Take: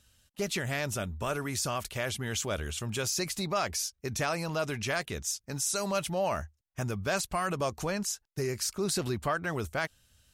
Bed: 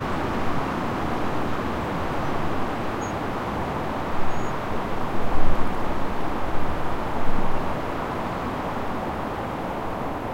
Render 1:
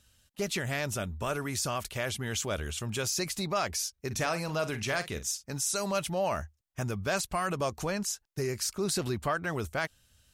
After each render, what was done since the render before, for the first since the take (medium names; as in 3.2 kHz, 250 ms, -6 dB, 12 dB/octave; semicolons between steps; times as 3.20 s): 4.06–5.44 s: doubling 46 ms -12 dB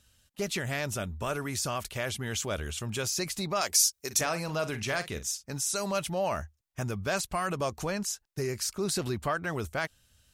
3.61–4.21 s: tone controls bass -12 dB, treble +12 dB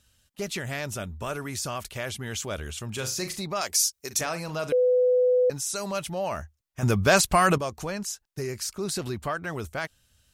2.93–3.41 s: flutter echo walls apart 6.6 m, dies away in 0.27 s; 4.72–5.50 s: bleep 500 Hz -17.5 dBFS; 6.83–7.58 s: gain +11 dB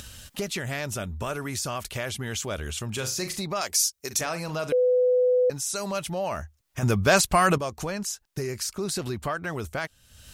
upward compressor, threshold -26 dBFS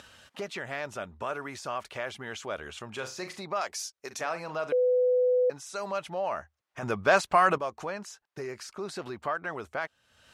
band-pass filter 980 Hz, Q 0.69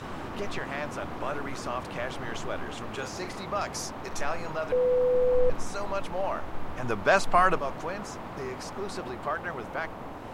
add bed -11.5 dB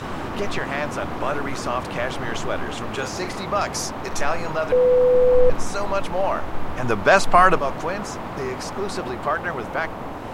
trim +8 dB; peak limiter -2 dBFS, peak gain reduction 2 dB